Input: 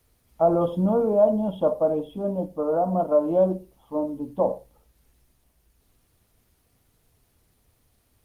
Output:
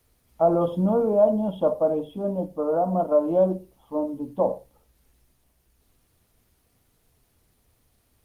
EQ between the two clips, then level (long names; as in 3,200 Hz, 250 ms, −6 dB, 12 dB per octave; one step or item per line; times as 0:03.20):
mains-hum notches 50/100/150 Hz
0.0 dB